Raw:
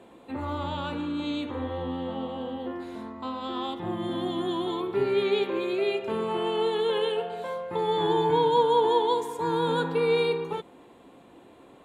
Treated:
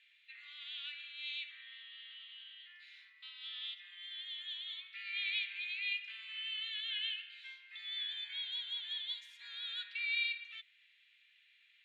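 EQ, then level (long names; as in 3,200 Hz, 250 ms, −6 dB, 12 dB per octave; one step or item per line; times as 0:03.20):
Butterworth high-pass 2,000 Hz 48 dB per octave
high-frequency loss of the air 270 metres
+4.5 dB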